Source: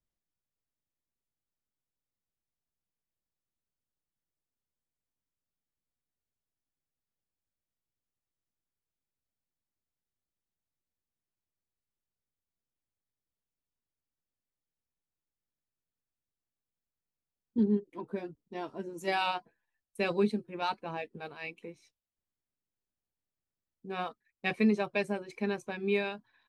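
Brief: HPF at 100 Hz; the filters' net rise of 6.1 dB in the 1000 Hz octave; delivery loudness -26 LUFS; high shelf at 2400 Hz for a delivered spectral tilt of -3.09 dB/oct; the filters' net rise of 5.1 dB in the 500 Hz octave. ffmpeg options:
-af "highpass=100,equalizer=f=500:t=o:g=5.5,equalizer=f=1k:t=o:g=4.5,highshelf=f=2.4k:g=8,volume=3.5dB"

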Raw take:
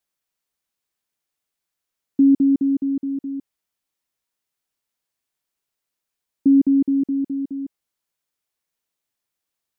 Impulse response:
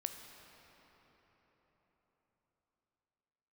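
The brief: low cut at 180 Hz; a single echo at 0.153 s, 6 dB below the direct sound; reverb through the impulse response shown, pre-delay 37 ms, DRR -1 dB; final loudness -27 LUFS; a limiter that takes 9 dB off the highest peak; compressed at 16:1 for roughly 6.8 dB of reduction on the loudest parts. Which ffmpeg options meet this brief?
-filter_complex "[0:a]highpass=180,acompressor=threshold=-18dB:ratio=16,alimiter=limit=-20dB:level=0:latency=1,aecho=1:1:153:0.501,asplit=2[a][b];[1:a]atrim=start_sample=2205,adelay=37[c];[b][c]afir=irnorm=-1:irlink=0,volume=2dB[d];[a][d]amix=inputs=2:normalize=0,volume=-7dB"

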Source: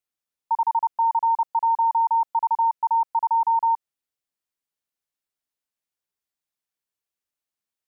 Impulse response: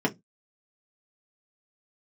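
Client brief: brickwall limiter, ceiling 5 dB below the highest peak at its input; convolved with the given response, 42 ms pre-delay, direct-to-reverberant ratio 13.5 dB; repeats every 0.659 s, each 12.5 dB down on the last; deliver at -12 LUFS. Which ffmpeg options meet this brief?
-filter_complex "[0:a]alimiter=limit=-21dB:level=0:latency=1,aecho=1:1:659|1318|1977:0.237|0.0569|0.0137,asplit=2[a][b];[1:a]atrim=start_sample=2205,adelay=42[c];[b][c]afir=irnorm=-1:irlink=0,volume=-24.5dB[d];[a][d]amix=inputs=2:normalize=0,volume=15.5dB"

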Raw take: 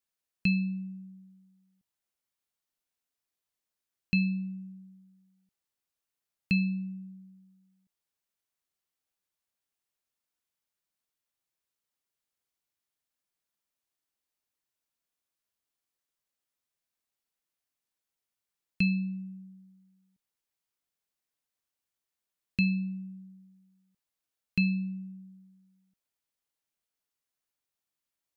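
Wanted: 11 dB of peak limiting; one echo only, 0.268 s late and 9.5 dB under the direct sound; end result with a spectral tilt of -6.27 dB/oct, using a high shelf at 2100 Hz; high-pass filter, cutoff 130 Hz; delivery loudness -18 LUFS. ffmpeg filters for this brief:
-af "highpass=130,highshelf=f=2.1k:g=-7.5,alimiter=level_in=4.5dB:limit=-24dB:level=0:latency=1,volume=-4.5dB,aecho=1:1:268:0.335,volume=20dB"

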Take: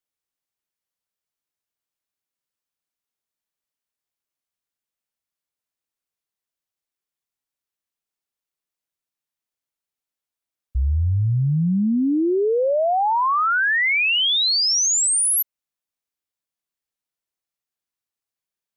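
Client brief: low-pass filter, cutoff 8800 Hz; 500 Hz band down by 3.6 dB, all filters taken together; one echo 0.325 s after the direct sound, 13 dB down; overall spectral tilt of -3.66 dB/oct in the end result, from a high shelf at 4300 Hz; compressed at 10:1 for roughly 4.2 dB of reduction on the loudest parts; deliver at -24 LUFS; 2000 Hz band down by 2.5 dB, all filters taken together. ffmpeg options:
-af "lowpass=8.8k,equalizer=f=500:t=o:g=-4.5,equalizer=f=2k:t=o:g=-5,highshelf=f=4.3k:g=9,acompressor=threshold=-17dB:ratio=10,aecho=1:1:325:0.224,volume=-5dB"

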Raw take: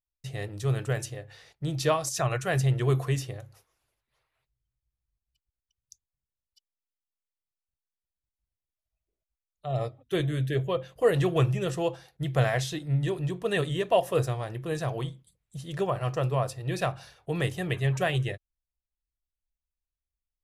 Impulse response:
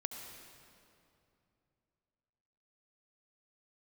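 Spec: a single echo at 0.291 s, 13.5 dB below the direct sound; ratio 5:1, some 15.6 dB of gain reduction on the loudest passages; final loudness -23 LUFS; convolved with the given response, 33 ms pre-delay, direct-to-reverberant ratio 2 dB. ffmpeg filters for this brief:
-filter_complex "[0:a]acompressor=threshold=-36dB:ratio=5,aecho=1:1:291:0.211,asplit=2[a][b];[1:a]atrim=start_sample=2205,adelay=33[c];[b][c]afir=irnorm=-1:irlink=0,volume=-1.5dB[d];[a][d]amix=inputs=2:normalize=0,volume=15dB"

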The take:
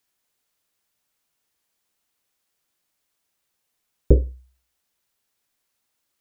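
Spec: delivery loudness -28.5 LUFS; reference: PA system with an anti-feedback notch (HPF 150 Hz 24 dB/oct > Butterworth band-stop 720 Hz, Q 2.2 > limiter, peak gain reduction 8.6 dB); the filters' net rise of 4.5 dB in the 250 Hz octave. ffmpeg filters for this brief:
-af "highpass=f=150:w=0.5412,highpass=f=150:w=1.3066,asuperstop=centerf=720:order=8:qfactor=2.2,equalizer=f=250:t=o:g=6.5,volume=1.5dB,alimiter=limit=-12dB:level=0:latency=1"

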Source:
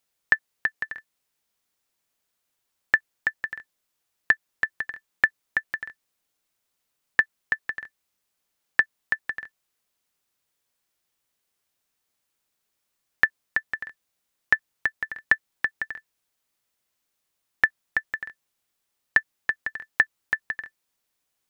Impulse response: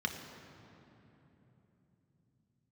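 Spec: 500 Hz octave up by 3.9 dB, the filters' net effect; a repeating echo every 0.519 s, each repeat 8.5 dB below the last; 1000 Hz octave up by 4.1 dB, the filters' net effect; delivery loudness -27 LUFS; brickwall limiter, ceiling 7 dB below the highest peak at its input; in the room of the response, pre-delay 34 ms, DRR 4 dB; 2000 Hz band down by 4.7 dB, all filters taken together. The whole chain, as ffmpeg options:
-filter_complex "[0:a]equalizer=f=500:t=o:g=3,equalizer=f=1k:t=o:g=7.5,equalizer=f=2k:t=o:g=-8,alimiter=limit=-12dB:level=0:latency=1,aecho=1:1:519|1038|1557|2076:0.376|0.143|0.0543|0.0206,asplit=2[a][b];[1:a]atrim=start_sample=2205,adelay=34[c];[b][c]afir=irnorm=-1:irlink=0,volume=-8.5dB[d];[a][d]amix=inputs=2:normalize=0,volume=7.5dB"

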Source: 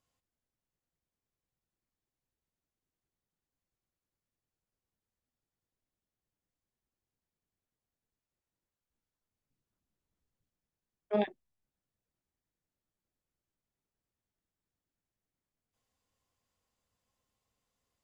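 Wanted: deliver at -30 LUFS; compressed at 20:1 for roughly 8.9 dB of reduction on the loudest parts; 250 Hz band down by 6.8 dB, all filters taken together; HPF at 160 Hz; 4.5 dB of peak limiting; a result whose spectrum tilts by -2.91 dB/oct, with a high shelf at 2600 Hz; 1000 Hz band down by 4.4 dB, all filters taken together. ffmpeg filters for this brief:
-af "highpass=160,equalizer=f=250:t=o:g=-7,equalizer=f=1k:t=o:g=-6.5,highshelf=f=2.6k:g=9,acompressor=threshold=-36dB:ratio=20,volume=16.5dB,alimiter=limit=-15dB:level=0:latency=1"

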